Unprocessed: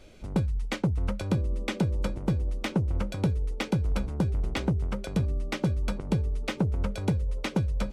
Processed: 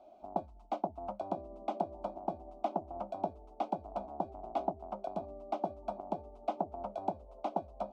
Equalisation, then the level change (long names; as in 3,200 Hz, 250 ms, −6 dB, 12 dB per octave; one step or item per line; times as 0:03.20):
low-pass with resonance 690 Hz, resonance Q 6.7
first difference
phaser with its sweep stopped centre 480 Hz, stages 6
+17.0 dB